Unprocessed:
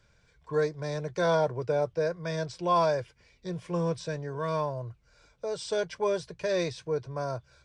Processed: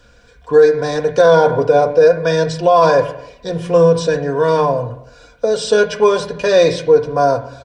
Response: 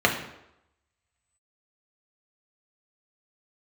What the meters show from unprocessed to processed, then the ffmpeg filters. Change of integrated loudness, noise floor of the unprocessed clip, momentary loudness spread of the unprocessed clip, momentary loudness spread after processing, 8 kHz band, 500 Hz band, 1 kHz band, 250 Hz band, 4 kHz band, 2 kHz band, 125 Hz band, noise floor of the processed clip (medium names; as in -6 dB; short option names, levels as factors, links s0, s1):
+17.0 dB, -65 dBFS, 11 LU, 9 LU, +14.0 dB, +17.5 dB, +15.0 dB, +13.5 dB, +14.5 dB, +15.5 dB, +11.5 dB, -48 dBFS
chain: -filter_complex "[0:a]aecho=1:1:4.1:0.55,asplit=2[s0][s1];[1:a]atrim=start_sample=2205,lowpass=5100[s2];[s1][s2]afir=irnorm=-1:irlink=0,volume=0.112[s3];[s0][s3]amix=inputs=2:normalize=0,alimiter=level_in=5.31:limit=0.891:release=50:level=0:latency=1,volume=0.891"